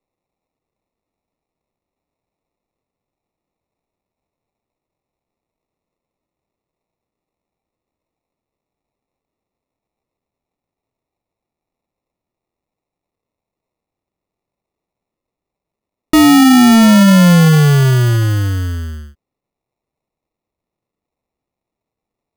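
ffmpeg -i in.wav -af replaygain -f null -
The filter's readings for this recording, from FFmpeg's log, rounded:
track_gain = -6.9 dB
track_peak = 0.372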